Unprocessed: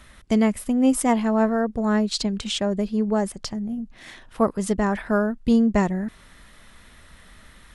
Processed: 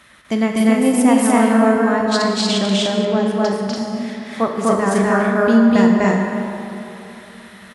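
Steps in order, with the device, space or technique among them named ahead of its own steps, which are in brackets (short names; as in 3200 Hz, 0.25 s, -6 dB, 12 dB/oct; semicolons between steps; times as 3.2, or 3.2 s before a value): stadium PA (HPF 130 Hz 12 dB/oct; bell 1900 Hz +4 dB 2.4 oct; loudspeakers at several distances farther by 85 m 0 dB, 99 m -2 dB; reverb RT60 3.1 s, pre-delay 17 ms, DRR 2 dB); 3.05–3.76 air absorption 67 m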